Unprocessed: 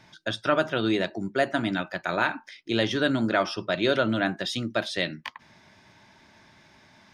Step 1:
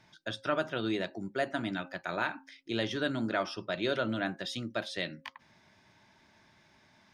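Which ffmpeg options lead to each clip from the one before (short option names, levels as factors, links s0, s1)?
-af "bandreject=f=269.5:t=h:w=4,bandreject=f=539:t=h:w=4,bandreject=f=808.5:t=h:w=4,volume=0.422"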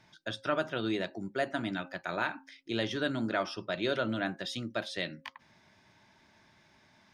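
-af anull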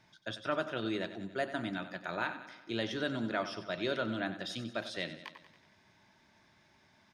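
-af "aecho=1:1:93|186|279|372|465|558|651:0.237|0.14|0.0825|0.0487|0.0287|0.017|0.01,volume=0.708"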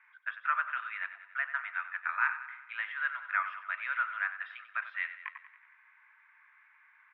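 -af "asuperpass=centerf=1600:order=8:qfactor=1.2,volume=2.66"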